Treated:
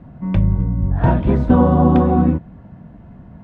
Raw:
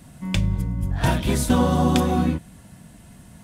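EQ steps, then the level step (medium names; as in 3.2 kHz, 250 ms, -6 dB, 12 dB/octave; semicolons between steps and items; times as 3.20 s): low-pass 1.1 kHz 12 dB/octave; distance through air 60 m; +6.5 dB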